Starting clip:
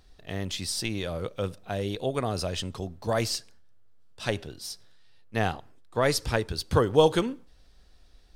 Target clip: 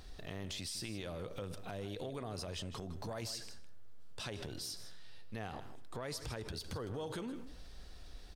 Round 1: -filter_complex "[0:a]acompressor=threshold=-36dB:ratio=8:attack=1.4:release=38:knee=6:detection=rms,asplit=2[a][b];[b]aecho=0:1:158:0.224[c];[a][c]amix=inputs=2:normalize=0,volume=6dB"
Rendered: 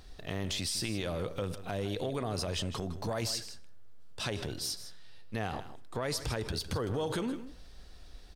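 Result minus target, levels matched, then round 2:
compressor: peak gain reduction -8.5 dB
-filter_complex "[0:a]acompressor=threshold=-45.5dB:ratio=8:attack=1.4:release=38:knee=6:detection=rms,asplit=2[a][b];[b]aecho=0:1:158:0.224[c];[a][c]amix=inputs=2:normalize=0,volume=6dB"

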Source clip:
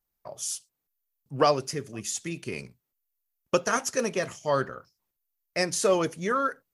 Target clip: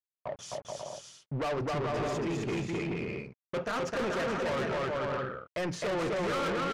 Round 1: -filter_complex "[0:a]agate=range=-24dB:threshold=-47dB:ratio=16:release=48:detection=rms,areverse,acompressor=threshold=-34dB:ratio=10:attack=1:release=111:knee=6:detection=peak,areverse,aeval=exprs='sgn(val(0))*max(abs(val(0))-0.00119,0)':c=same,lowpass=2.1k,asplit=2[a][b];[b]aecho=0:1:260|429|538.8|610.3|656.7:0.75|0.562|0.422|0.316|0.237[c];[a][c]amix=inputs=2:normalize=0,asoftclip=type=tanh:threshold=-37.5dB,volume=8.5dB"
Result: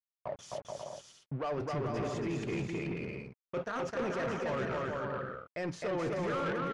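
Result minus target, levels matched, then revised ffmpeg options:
compressor: peak gain reduction +9 dB
-filter_complex "[0:a]agate=range=-24dB:threshold=-47dB:ratio=16:release=48:detection=rms,areverse,acompressor=threshold=-24dB:ratio=10:attack=1:release=111:knee=6:detection=peak,areverse,aeval=exprs='sgn(val(0))*max(abs(val(0))-0.00119,0)':c=same,lowpass=2.1k,asplit=2[a][b];[b]aecho=0:1:260|429|538.8|610.3|656.7:0.75|0.562|0.422|0.316|0.237[c];[a][c]amix=inputs=2:normalize=0,asoftclip=type=tanh:threshold=-37.5dB,volume=8.5dB"

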